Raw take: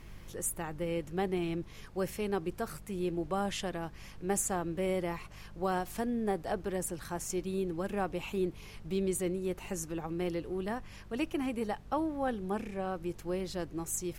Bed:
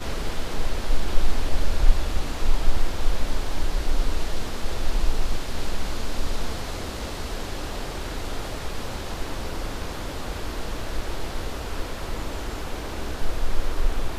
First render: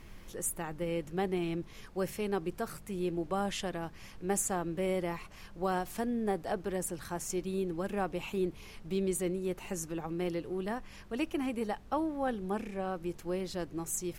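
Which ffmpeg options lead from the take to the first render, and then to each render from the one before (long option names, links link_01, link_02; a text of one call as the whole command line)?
ffmpeg -i in.wav -af "bandreject=frequency=50:width_type=h:width=4,bandreject=frequency=100:width_type=h:width=4,bandreject=frequency=150:width_type=h:width=4" out.wav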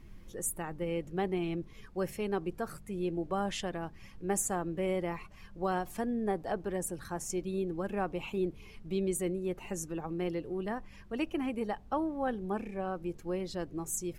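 ffmpeg -i in.wav -af "afftdn=noise_reduction=9:noise_floor=-51" out.wav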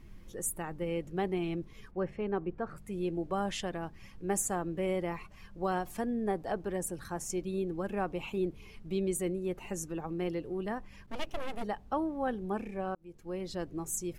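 ffmpeg -i in.wav -filter_complex "[0:a]asplit=3[link_01][link_02][link_03];[link_01]afade=type=out:start_time=1.9:duration=0.02[link_04];[link_02]lowpass=2000,afade=type=in:start_time=1.9:duration=0.02,afade=type=out:start_time=2.76:duration=0.02[link_05];[link_03]afade=type=in:start_time=2.76:duration=0.02[link_06];[link_04][link_05][link_06]amix=inputs=3:normalize=0,asplit=3[link_07][link_08][link_09];[link_07]afade=type=out:start_time=11.06:duration=0.02[link_10];[link_08]aeval=exprs='abs(val(0))':channel_layout=same,afade=type=in:start_time=11.06:duration=0.02,afade=type=out:start_time=11.62:duration=0.02[link_11];[link_09]afade=type=in:start_time=11.62:duration=0.02[link_12];[link_10][link_11][link_12]amix=inputs=3:normalize=0,asplit=2[link_13][link_14];[link_13]atrim=end=12.95,asetpts=PTS-STARTPTS,afade=type=out:start_time=12.946:duration=0.004:curve=hsin[link_15];[link_14]atrim=start=12.95,asetpts=PTS-STARTPTS,afade=type=in:duration=0.57[link_16];[link_15][link_16]concat=n=2:v=0:a=1" out.wav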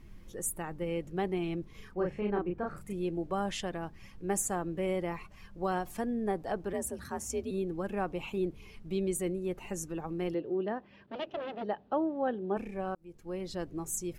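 ffmpeg -i in.wav -filter_complex "[0:a]asettb=1/sr,asplit=3[link_01][link_02][link_03];[link_01]atrim=end=1.714[link_04];[link_02]atrim=start=1.71:end=2.93,asetpts=PTS-STARTPTS,afade=type=in:duration=0.004:curve=qsin,afade=type=out:start_time=1.216:duration=0.004:curve=qsin,asplit=2[link_05][link_06];[link_06]adelay=34,volume=-2dB[link_07];[link_05][link_07]amix=inputs=2:normalize=0,atrim=end_sample=53802[link_08];[link_03]atrim=start=2.926[link_09];[link_04][link_08]acrossfade=duration=0.004:curve1=hsin:curve2=qsin[link_10];[link_10][link_09]acrossfade=duration=0.004:curve1=qsin:curve2=hsin,asettb=1/sr,asplit=3[link_11][link_12][link_13];[link_11]atrim=end=6.734[link_14];[link_12]atrim=start=6.73:end=7.51,asetpts=PTS-STARTPTS,afade=type=in:duration=0.004:curve=qsin,afade=type=out:start_time=0.776:duration=0.004:curve=qsin,afreqshift=53[link_15];[link_13]atrim=start=7.506[link_16];[link_14][link_15]acrossfade=duration=0.004:curve1=hsin:curve2=qsin[link_17];[link_17][link_16]acrossfade=duration=0.004:curve1=qsin:curve2=hsin,asettb=1/sr,asplit=3[link_18][link_19][link_20];[link_18]atrim=end=10.344[link_21];[link_19]atrim=start=10.34:end=12.57,asetpts=PTS-STARTPTS,afade=type=in:duration=0.004:curve=qsin,afade=type=out:start_time=2.226:duration=0.004:curve=qsin,highpass=160,equalizer=frequency=370:width_type=q:width=4:gain=5,equalizer=frequency=600:width_type=q:width=4:gain=5,equalizer=frequency=1100:width_type=q:width=4:gain=-3,equalizer=frequency=2200:width_type=q:width=4:gain=-6,lowpass=frequency=3800:width=0.5412,lowpass=frequency=3800:width=1.3066[link_22];[link_20]atrim=start=12.566[link_23];[link_21][link_22]acrossfade=duration=0.004:curve1=hsin:curve2=qsin[link_24];[link_24][link_23]acrossfade=duration=0.004:curve1=qsin:curve2=hsin" out.wav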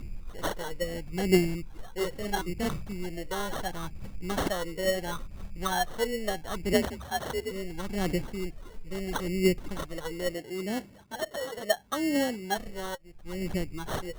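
ffmpeg -i in.wav -af "aphaser=in_gain=1:out_gain=1:delay=2.3:decay=0.8:speed=0.74:type=triangular,acrusher=samples=18:mix=1:aa=0.000001" out.wav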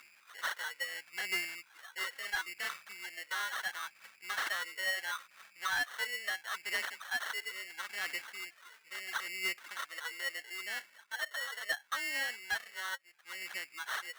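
ffmpeg -i in.wav -af "highpass=frequency=1600:width_type=q:width=2.1,asoftclip=type=tanh:threshold=-27.5dB" out.wav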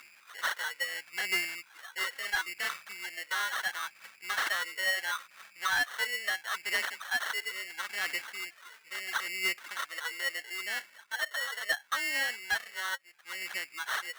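ffmpeg -i in.wav -af "volume=4.5dB" out.wav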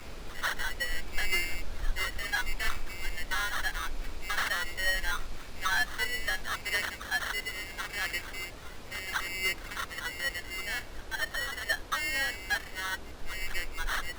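ffmpeg -i in.wav -i bed.wav -filter_complex "[1:a]volume=-14.5dB[link_01];[0:a][link_01]amix=inputs=2:normalize=0" out.wav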